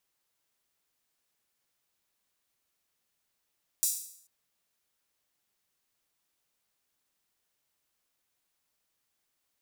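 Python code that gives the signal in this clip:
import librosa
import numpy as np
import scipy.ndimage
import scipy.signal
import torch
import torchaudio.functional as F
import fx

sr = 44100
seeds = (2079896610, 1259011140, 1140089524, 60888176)

y = fx.drum_hat_open(sr, length_s=0.44, from_hz=6900.0, decay_s=0.63)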